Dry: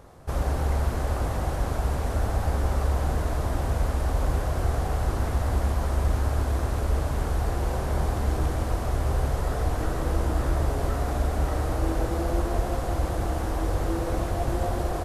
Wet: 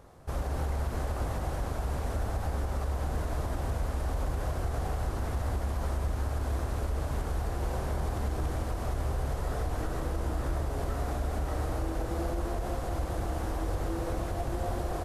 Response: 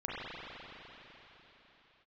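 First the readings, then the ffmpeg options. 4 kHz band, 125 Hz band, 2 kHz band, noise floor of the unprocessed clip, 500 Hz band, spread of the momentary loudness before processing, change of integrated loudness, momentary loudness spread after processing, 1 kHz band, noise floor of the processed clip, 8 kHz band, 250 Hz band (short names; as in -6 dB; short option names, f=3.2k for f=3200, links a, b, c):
-5.5 dB, -6.0 dB, -5.5 dB, -29 dBFS, -5.5 dB, 2 LU, -6.0 dB, 1 LU, -5.5 dB, -35 dBFS, -5.5 dB, -6.0 dB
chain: -af "alimiter=limit=-18dB:level=0:latency=1:release=71,volume=-4.5dB"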